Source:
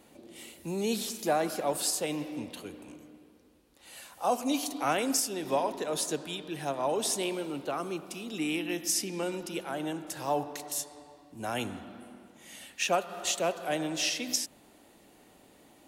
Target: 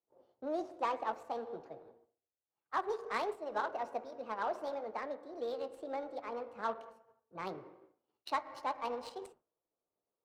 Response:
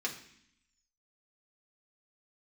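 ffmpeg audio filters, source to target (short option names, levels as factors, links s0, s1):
-af "flanger=delay=9.2:depth=6.9:regen=-61:speed=0.74:shape=sinusoidal,asetrate=68355,aresample=44100,adynamicsmooth=sensitivity=3.5:basefreq=1200,agate=range=0.0224:threshold=0.00355:ratio=3:detection=peak,equalizer=f=660:w=2.1:g=4.5,volume=0.708"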